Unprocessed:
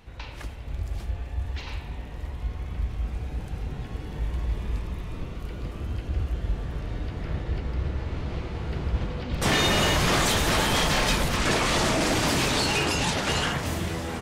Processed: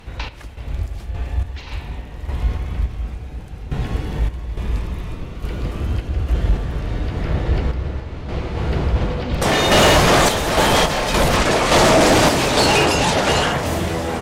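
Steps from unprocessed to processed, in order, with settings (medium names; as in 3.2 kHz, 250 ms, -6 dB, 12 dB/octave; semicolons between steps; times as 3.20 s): dynamic bell 610 Hz, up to +7 dB, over -40 dBFS, Q 0.95; random-step tremolo 3.5 Hz, depth 75%; sine folder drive 8 dB, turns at -8 dBFS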